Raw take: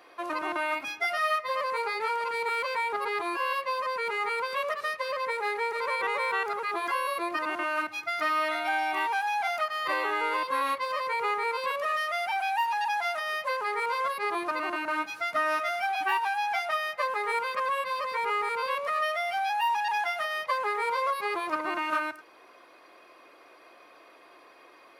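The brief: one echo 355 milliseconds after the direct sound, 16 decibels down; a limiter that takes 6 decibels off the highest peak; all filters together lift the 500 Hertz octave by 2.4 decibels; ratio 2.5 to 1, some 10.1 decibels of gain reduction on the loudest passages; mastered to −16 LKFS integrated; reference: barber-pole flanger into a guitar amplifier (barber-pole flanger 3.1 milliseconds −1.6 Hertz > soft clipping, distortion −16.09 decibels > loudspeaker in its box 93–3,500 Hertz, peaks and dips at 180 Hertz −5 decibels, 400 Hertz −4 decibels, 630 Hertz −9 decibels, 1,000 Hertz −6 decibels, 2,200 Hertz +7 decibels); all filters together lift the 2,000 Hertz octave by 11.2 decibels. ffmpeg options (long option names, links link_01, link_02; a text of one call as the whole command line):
ffmpeg -i in.wav -filter_complex "[0:a]equalizer=frequency=500:width_type=o:gain=8,equalizer=frequency=2000:width_type=o:gain=8.5,acompressor=threshold=-34dB:ratio=2.5,alimiter=level_in=1.5dB:limit=-24dB:level=0:latency=1,volume=-1.5dB,aecho=1:1:355:0.158,asplit=2[link_01][link_02];[link_02]adelay=3.1,afreqshift=-1.6[link_03];[link_01][link_03]amix=inputs=2:normalize=1,asoftclip=threshold=-32dB,highpass=93,equalizer=frequency=180:width_type=q:width=4:gain=-5,equalizer=frequency=400:width_type=q:width=4:gain=-4,equalizer=frequency=630:width_type=q:width=4:gain=-9,equalizer=frequency=1000:width_type=q:width=4:gain=-6,equalizer=frequency=2200:width_type=q:width=4:gain=7,lowpass=frequency=3500:width=0.5412,lowpass=frequency=3500:width=1.3066,volume=20.5dB" out.wav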